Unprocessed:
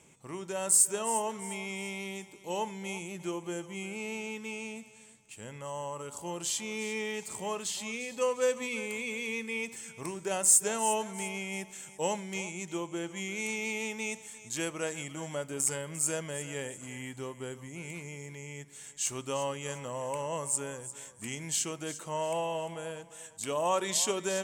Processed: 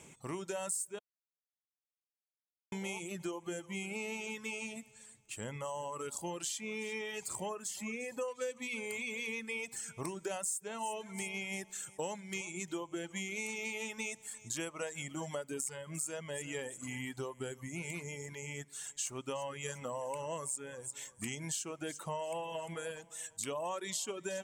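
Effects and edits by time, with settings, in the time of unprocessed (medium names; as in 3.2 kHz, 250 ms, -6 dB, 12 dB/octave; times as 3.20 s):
0.99–2.72 s: mute
7.49–8.28 s: peaking EQ 3.7 kHz -12.5 dB 0.97 oct
whole clip: reverb removal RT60 1.6 s; compression 6:1, threshold -41 dBFS; trim +4.5 dB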